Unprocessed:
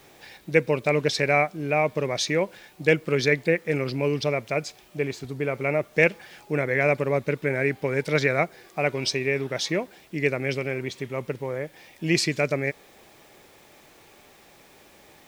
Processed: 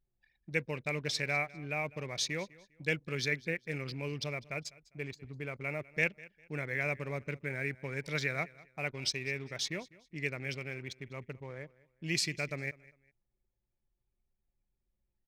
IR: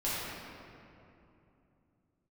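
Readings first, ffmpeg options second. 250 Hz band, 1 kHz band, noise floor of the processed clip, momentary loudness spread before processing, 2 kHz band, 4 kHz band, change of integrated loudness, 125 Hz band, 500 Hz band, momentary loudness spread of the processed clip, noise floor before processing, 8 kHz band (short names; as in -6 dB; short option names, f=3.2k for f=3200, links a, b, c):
-13.5 dB, -14.0 dB, -83 dBFS, 10 LU, -9.0 dB, -6.5 dB, -11.0 dB, -10.0 dB, -16.5 dB, 12 LU, -54 dBFS, -6.0 dB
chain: -af "anlmdn=1.58,equalizer=f=490:w=0.39:g=-11,aecho=1:1:201|402:0.0841|0.0236,volume=-5.5dB"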